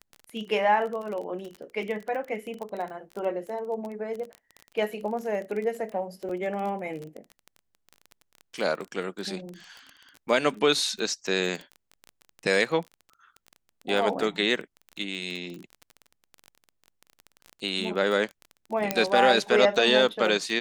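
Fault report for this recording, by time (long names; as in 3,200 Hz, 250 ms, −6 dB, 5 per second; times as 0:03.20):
surface crackle 21 per second −32 dBFS
0:06.29–0:06.30: drop-out 5.2 ms
0:18.91: click −8 dBFS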